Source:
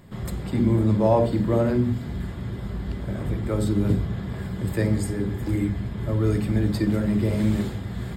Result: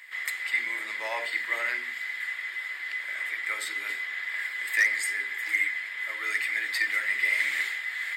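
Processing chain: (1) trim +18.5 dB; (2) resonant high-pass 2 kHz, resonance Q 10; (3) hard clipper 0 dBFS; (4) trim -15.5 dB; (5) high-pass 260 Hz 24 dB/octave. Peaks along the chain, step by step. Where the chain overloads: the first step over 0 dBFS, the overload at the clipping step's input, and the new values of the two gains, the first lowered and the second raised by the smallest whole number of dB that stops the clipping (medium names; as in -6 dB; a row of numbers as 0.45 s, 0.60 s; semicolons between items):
+10.0 dBFS, +7.5 dBFS, 0.0 dBFS, -15.5 dBFS, -13.0 dBFS; step 1, 7.5 dB; step 1 +10.5 dB, step 4 -7.5 dB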